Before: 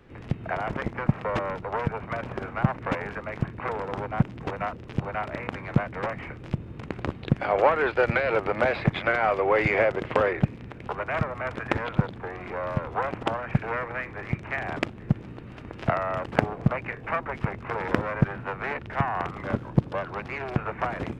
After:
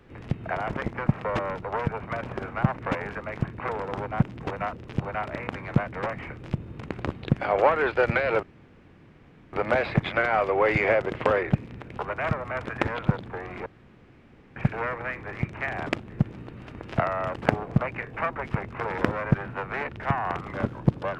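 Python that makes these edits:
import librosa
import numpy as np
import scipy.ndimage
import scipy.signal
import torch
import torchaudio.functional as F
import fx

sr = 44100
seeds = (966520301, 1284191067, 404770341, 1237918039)

y = fx.edit(x, sr, fx.insert_room_tone(at_s=8.43, length_s=1.1),
    fx.room_tone_fill(start_s=12.56, length_s=0.9), tone=tone)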